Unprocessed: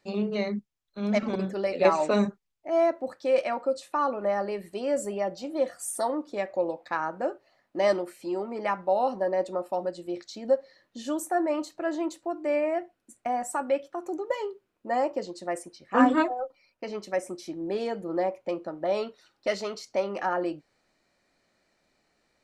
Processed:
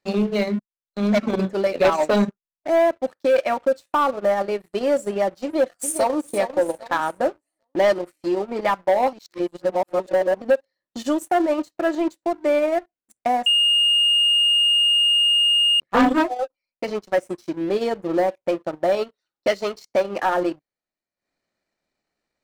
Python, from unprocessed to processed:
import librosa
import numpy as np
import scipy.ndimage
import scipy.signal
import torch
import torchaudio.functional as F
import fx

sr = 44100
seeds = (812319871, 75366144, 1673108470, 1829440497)

y = fx.echo_throw(x, sr, start_s=5.43, length_s=0.77, ms=400, feedback_pct=45, wet_db=-8.0)
y = fx.edit(y, sr, fx.reverse_span(start_s=9.13, length_s=1.29),
    fx.bleep(start_s=13.46, length_s=2.34, hz=2840.0, db=-21.0), tone=tone)
y = fx.leveller(y, sr, passes=3)
y = fx.transient(y, sr, attack_db=2, sustain_db=-12)
y = y * 10.0 ** (-3.5 / 20.0)